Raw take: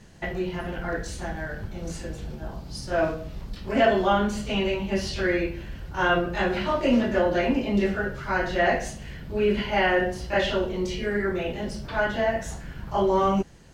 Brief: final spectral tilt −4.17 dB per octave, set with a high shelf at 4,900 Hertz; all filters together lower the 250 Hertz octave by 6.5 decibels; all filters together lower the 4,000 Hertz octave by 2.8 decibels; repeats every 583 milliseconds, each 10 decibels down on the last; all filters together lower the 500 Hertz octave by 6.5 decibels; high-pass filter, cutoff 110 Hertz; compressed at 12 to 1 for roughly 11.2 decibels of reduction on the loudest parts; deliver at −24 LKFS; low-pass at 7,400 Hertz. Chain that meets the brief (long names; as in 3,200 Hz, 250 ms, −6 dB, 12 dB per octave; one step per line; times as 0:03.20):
high-pass filter 110 Hz
low-pass filter 7,400 Hz
parametric band 250 Hz −6.5 dB
parametric band 500 Hz −7 dB
parametric band 4,000 Hz −8 dB
high-shelf EQ 4,900 Hz +8.5 dB
downward compressor 12 to 1, threshold −31 dBFS
repeating echo 583 ms, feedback 32%, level −10 dB
level +12 dB